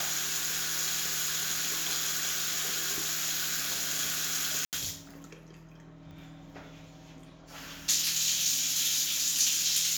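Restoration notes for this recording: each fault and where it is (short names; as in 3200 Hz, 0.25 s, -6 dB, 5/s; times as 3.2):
4.65–4.73 gap 78 ms
6.11 pop -38 dBFS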